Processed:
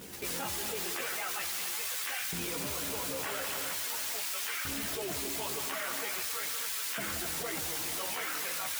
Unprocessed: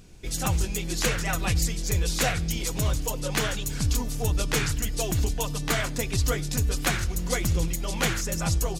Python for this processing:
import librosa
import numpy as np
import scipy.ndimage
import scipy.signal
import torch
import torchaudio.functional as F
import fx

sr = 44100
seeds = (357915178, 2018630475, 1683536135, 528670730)

y = fx.doppler_pass(x, sr, speed_mps=20, closest_m=1.6, pass_at_s=2.54)
y = scipy.signal.savgol_filter(y, 25, 4, mode='constant')
y = fx.low_shelf(y, sr, hz=300.0, db=6.5)
y = fx.mod_noise(y, sr, seeds[0], snr_db=10)
y = fx.chorus_voices(y, sr, voices=6, hz=0.44, base_ms=13, depth_ms=2.4, mix_pct=55)
y = fx.filter_lfo_highpass(y, sr, shape='saw_up', hz=0.43, low_hz=250.0, high_hz=1500.0, q=0.75)
y = fx.echo_heads(y, sr, ms=88, heads='second and third', feedback_pct=45, wet_db=-14.0)
y = fx.env_flatten(y, sr, amount_pct=100)